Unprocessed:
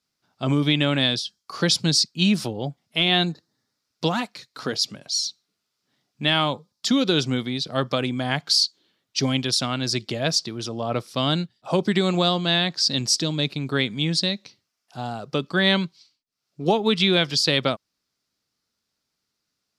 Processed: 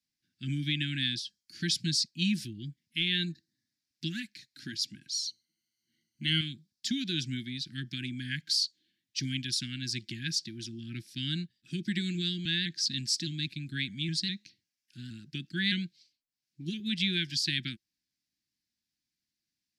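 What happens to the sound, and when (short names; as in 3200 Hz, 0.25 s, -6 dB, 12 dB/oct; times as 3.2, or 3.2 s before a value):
5.27–6.41 ripple EQ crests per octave 1.9, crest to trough 17 dB
12.45–16.8 shaped vibrato saw up 4.9 Hz, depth 100 cents
whole clip: Chebyshev band-stop 340–1600 Hz, order 5; dynamic EQ 290 Hz, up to -6 dB, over -40 dBFS, Q 3.2; gain -8 dB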